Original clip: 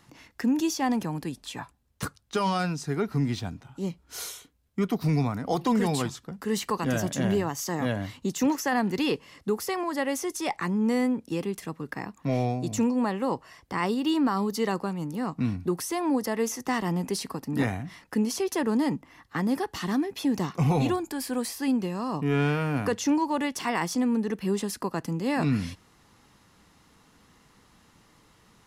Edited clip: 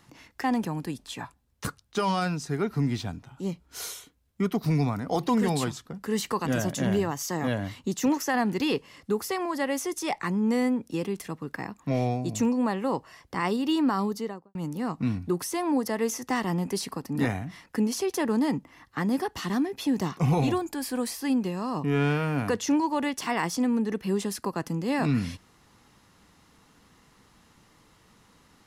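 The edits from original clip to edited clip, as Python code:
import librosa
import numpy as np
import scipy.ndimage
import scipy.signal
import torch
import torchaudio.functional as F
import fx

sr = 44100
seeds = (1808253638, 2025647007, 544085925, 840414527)

y = fx.studio_fade_out(x, sr, start_s=14.36, length_s=0.57)
y = fx.edit(y, sr, fx.cut(start_s=0.44, length_s=0.38), tone=tone)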